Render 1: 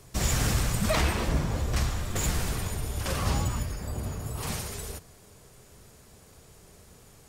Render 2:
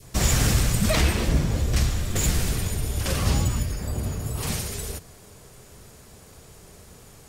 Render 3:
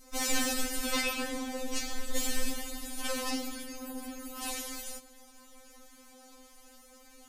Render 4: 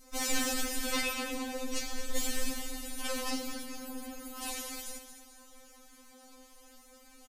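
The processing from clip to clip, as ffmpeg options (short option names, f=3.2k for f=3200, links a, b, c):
-af "adynamicequalizer=threshold=0.00355:dfrequency=1000:dqfactor=0.91:tfrequency=1000:tqfactor=0.91:attack=5:release=100:ratio=0.375:range=4:mode=cutabove:tftype=bell,volume=5.5dB"
-af "afftfilt=real='re*3.46*eq(mod(b,12),0)':imag='im*3.46*eq(mod(b,12),0)':win_size=2048:overlap=0.75,volume=-3dB"
-af "aecho=1:1:222|444|666|888|1110:0.282|0.124|0.0546|0.024|0.0106,volume=-1.5dB"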